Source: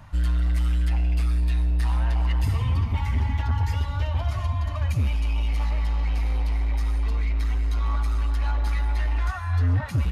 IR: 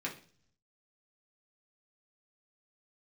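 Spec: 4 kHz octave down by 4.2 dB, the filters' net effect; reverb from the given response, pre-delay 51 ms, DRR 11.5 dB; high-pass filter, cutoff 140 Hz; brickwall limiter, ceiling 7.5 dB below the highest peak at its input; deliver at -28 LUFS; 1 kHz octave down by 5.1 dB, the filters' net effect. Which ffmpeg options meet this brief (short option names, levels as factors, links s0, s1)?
-filter_complex "[0:a]highpass=140,equalizer=f=1000:t=o:g=-6,equalizer=f=4000:t=o:g=-5.5,alimiter=level_in=1.5:limit=0.0631:level=0:latency=1,volume=0.668,asplit=2[s0][s1];[1:a]atrim=start_sample=2205,adelay=51[s2];[s1][s2]afir=irnorm=-1:irlink=0,volume=0.188[s3];[s0][s3]amix=inputs=2:normalize=0,volume=2.82"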